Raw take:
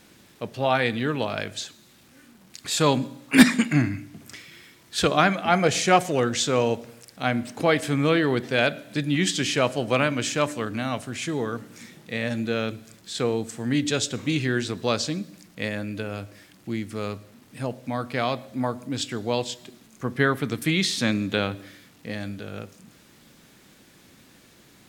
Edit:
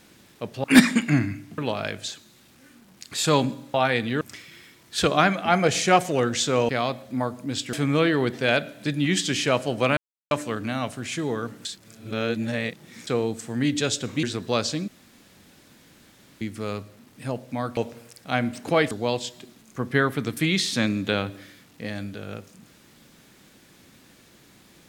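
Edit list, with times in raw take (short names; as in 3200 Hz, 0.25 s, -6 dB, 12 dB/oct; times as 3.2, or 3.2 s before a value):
0.64–1.11 swap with 3.27–4.21
6.69–7.83 swap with 18.12–19.16
10.07–10.41 mute
11.75–13.17 reverse
14.33–14.58 cut
15.23–16.76 room tone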